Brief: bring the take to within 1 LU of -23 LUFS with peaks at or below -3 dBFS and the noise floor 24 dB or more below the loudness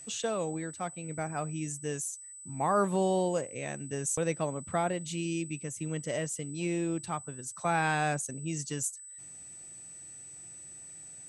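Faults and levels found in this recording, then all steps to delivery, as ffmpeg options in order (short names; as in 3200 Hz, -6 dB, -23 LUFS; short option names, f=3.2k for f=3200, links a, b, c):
steady tone 8000 Hz; tone level -45 dBFS; loudness -32.5 LUFS; peak -15.5 dBFS; loudness target -23.0 LUFS
-> -af "bandreject=f=8k:w=30"
-af "volume=9.5dB"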